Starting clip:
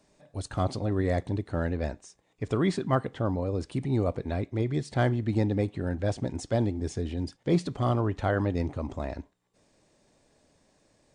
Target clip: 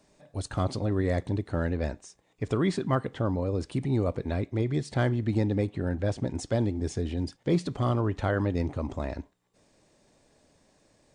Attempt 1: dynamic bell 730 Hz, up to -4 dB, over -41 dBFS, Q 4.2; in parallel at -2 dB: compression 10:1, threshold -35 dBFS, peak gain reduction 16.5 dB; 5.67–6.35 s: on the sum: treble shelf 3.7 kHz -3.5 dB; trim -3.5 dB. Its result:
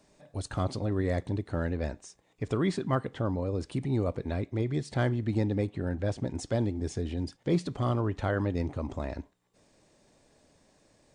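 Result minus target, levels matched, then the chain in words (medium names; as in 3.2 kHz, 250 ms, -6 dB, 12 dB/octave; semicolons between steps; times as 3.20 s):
compression: peak gain reduction +8.5 dB
dynamic bell 730 Hz, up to -4 dB, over -41 dBFS, Q 4.2; in parallel at -2 dB: compression 10:1, threshold -25.5 dBFS, peak gain reduction 8 dB; 5.67–6.35 s: on the sum: treble shelf 3.7 kHz -3.5 dB; trim -3.5 dB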